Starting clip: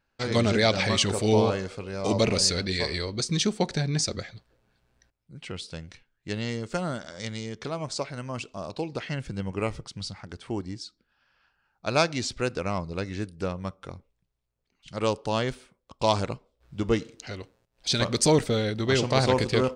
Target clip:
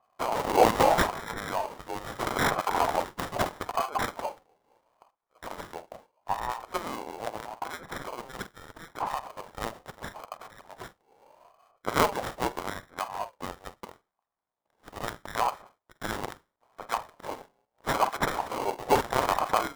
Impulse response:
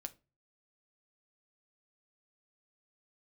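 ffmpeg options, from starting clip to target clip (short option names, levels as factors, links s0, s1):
-filter_complex "[0:a]highpass=f=1700:t=q:w=9,asplit=2[s0][s1];[1:a]atrim=start_sample=2205,adelay=45[s2];[s1][s2]afir=irnorm=-1:irlink=0,volume=0.376[s3];[s0][s3]amix=inputs=2:normalize=0,acrusher=samples=24:mix=1:aa=0.000001,aeval=exprs='val(0)*sin(2*PI*770*n/s+770*0.2/0.77*sin(2*PI*0.77*n/s))':c=same"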